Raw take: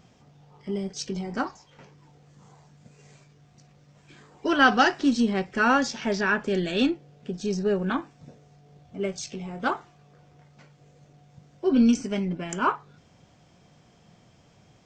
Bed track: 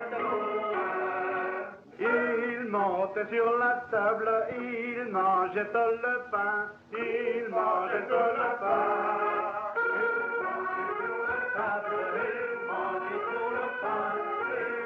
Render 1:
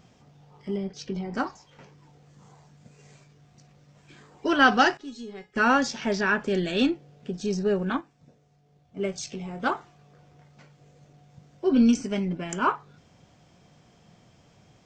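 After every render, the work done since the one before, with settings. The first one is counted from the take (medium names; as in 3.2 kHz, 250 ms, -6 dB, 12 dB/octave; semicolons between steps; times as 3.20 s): 0.76–1.33 s: distance through air 150 m; 4.97–5.56 s: feedback comb 420 Hz, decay 0.24 s, mix 90%; 7.84–8.97 s: upward expansion, over -41 dBFS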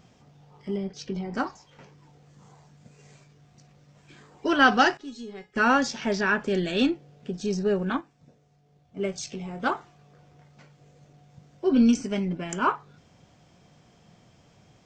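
no audible change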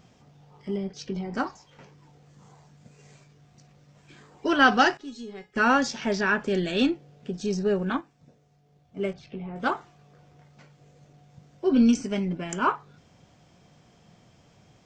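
9.13–9.56 s: distance through air 410 m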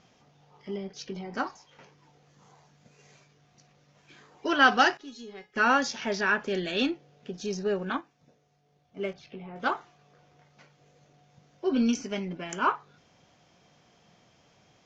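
elliptic low-pass 6.7 kHz, stop band 40 dB; bass shelf 240 Hz -10 dB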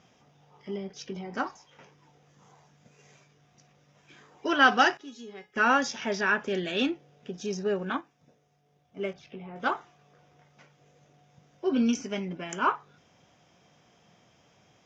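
high-pass 46 Hz; band-stop 4.3 kHz, Q 6.6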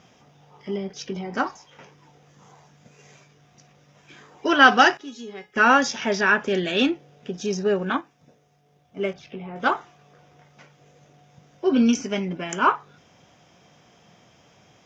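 trim +6.5 dB; peak limiter -2 dBFS, peak gain reduction 1 dB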